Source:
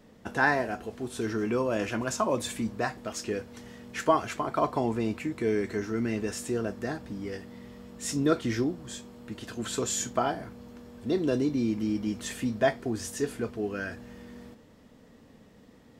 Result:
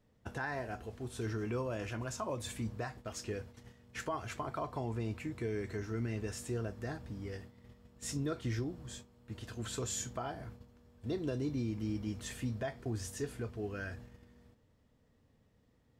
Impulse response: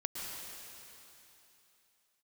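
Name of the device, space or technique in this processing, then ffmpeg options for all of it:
car stereo with a boomy subwoofer: -af "lowshelf=frequency=150:width_type=q:width=1.5:gain=7.5,alimiter=limit=-19.5dB:level=0:latency=1:release=153,agate=range=-9dB:threshold=-42dB:ratio=16:detection=peak,volume=-7.5dB"

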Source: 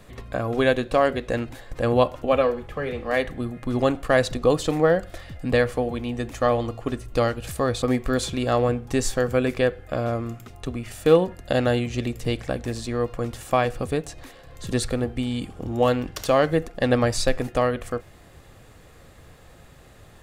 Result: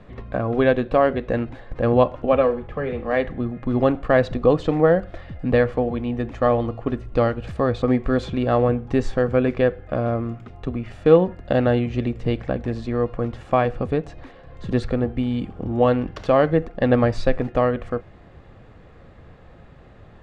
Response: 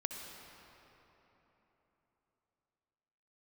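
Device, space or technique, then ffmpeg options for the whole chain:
phone in a pocket: -af "lowpass=3500,equalizer=frequency=200:width_type=o:width=0.39:gain=3,highshelf=frequency=2100:gain=-8.5,volume=3dB"

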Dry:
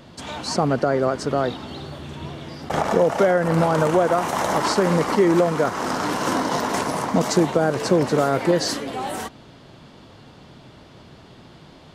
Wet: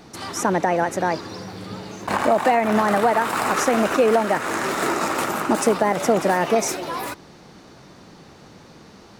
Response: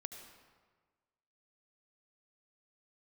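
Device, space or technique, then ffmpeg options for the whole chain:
nightcore: -af "asetrate=57330,aresample=44100"

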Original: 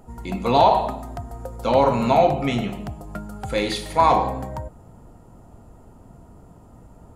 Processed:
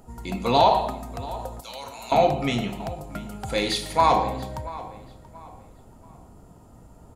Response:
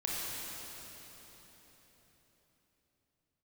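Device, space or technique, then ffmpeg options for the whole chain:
presence and air boost: -filter_complex "[0:a]asettb=1/sr,asplit=3[link_01][link_02][link_03];[link_01]atrim=end=1.604[link_04];[link_02]atrim=start=1.6:end=2.12,asetpts=PTS-STARTPTS,afade=type=in:duration=0.004:curve=qsin,afade=type=out:start_time=0.516:duration=0.004:curve=qsin,aderivative[link_05];[link_03]atrim=start=2.116[link_06];[link_04][link_05]acrossfade=duration=0.004:curve1=hsin:curve2=qsin[link_07];[link_07][link_06]acrossfade=duration=0.004:curve1=qsin:curve2=hsin,equalizer=frequency=4600:width_type=o:width=1.6:gain=4.5,highshelf=frequency=9400:gain=6,asplit=2[link_08][link_09];[link_09]adelay=682,lowpass=frequency=3400:poles=1,volume=-17dB,asplit=2[link_10][link_11];[link_11]adelay=682,lowpass=frequency=3400:poles=1,volume=0.35,asplit=2[link_12][link_13];[link_13]adelay=682,lowpass=frequency=3400:poles=1,volume=0.35[link_14];[link_08][link_10][link_12][link_14]amix=inputs=4:normalize=0,volume=-2.5dB"

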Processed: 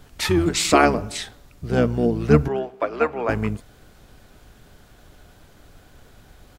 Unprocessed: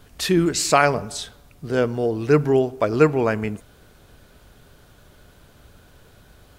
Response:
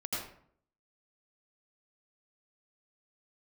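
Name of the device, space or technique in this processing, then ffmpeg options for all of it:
octave pedal: -filter_complex "[0:a]asplit=2[link_01][link_02];[link_02]asetrate=22050,aresample=44100,atempo=2,volume=-2dB[link_03];[link_01][link_03]amix=inputs=2:normalize=0,asettb=1/sr,asplit=3[link_04][link_05][link_06];[link_04]atrim=end=2.484[link_07];[link_05]atrim=start=2.48:end=3.29,asetpts=PTS-STARTPTS,afade=type=in:duration=0.004:curve=qsin,afade=type=out:start_time=0.806:duration=0.004:curve=qsin,acrossover=split=450 3200:gain=0.112 1 0.2[link_08][link_09][link_10];[link_08][link_09][link_10]amix=inputs=3:normalize=0[link_11];[link_06]atrim=start=3.286[link_12];[link_07][link_11]acrossfade=duration=0.004:curve1=hsin:curve2=qsin[link_13];[link_13][link_12]acrossfade=duration=0.004:curve1=qsin:curve2=hsin,volume=-1dB"

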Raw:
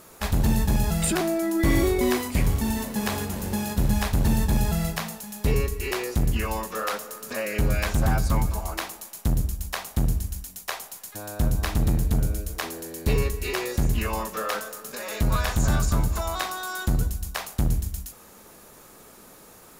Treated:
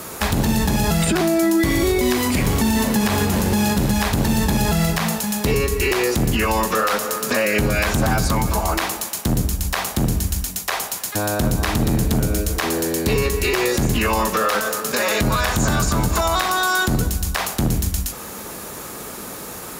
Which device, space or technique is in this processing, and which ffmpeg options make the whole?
mastering chain: -filter_complex "[0:a]highpass=44,equalizer=frequency=620:width_type=o:width=0.77:gain=-1.5,acrossover=split=170|2600|6900[link_01][link_02][link_03][link_04];[link_01]acompressor=threshold=-34dB:ratio=4[link_05];[link_02]acompressor=threshold=-29dB:ratio=4[link_06];[link_03]acompressor=threshold=-39dB:ratio=4[link_07];[link_04]acompressor=threshold=-42dB:ratio=4[link_08];[link_05][link_06][link_07][link_08]amix=inputs=4:normalize=0,acompressor=threshold=-31dB:ratio=3,asoftclip=type=tanh:threshold=-19.5dB,alimiter=level_in=25dB:limit=-1dB:release=50:level=0:latency=1,volume=-8.5dB"

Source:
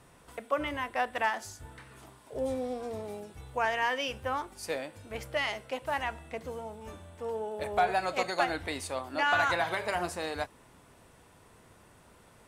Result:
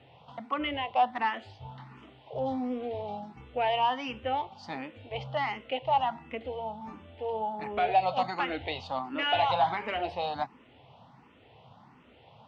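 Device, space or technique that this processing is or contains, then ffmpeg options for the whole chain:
barber-pole phaser into a guitar amplifier: -filter_complex "[0:a]asplit=2[link_01][link_02];[link_02]afreqshift=1.4[link_03];[link_01][link_03]amix=inputs=2:normalize=1,asoftclip=type=tanh:threshold=-23dB,highpass=89,equalizer=frequency=130:width_type=q:width=4:gain=7,equalizer=frequency=240:width_type=q:width=4:gain=5,equalizer=frequency=370:width_type=q:width=4:gain=-4,equalizer=frequency=810:width_type=q:width=4:gain=9,equalizer=frequency=1600:width_type=q:width=4:gain=-8,equalizer=frequency=3000:width_type=q:width=4:gain=7,lowpass=frequency=3900:width=0.5412,lowpass=frequency=3900:width=1.3066,volume=3.5dB"

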